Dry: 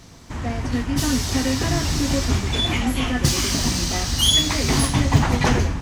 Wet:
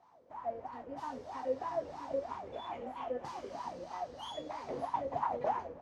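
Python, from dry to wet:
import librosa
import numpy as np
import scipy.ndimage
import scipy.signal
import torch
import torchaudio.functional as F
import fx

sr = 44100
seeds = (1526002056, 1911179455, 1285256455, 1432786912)

y = fx.wah_lfo(x, sr, hz=3.1, low_hz=490.0, high_hz=1000.0, q=12.0)
y = y * 10.0 ** (1.5 / 20.0)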